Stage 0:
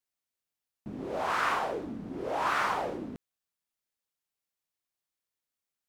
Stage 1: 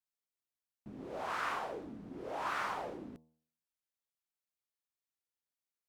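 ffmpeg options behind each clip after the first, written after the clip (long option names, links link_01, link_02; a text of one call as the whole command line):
ffmpeg -i in.wav -af "bandreject=frequency=79.28:width_type=h:width=4,bandreject=frequency=158.56:width_type=h:width=4,bandreject=frequency=237.84:width_type=h:width=4,bandreject=frequency=317.12:width_type=h:width=4,bandreject=frequency=396.4:width_type=h:width=4,bandreject=frequency=475.68:width_type=h:width=4,bandreject=frequency=554.96:width_type=h:width=4,bandreject=frequency=634.24:width_type=h:width=4,bandreject=frequency=713.52:width_type=h:width=4,bandreject=frequency=792.8:width_type=h:width=4,bandreject=frequency=872.08:width_type=h:width=4,bandreject=frequency=951.36:width_type=h:width=4,bandreject=frequency=1030.64:width_type=h:width=4,bandreject=frequency=1109.92:width_type=h:width=4,volume=-8dB" out.wav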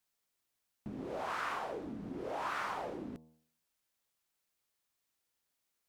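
ffmpeg -i in.wav -af "acompressor=threshold=-54dB:ratio=2,volume=10dB" out.wav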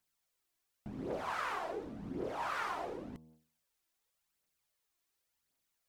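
ffmpeg -i in.wav -af "aphaser=in_gain=1:out_gain=1:delay=3.1:decay=0.47:speed=0.9:type=triangular,volume=-1dB" out.wav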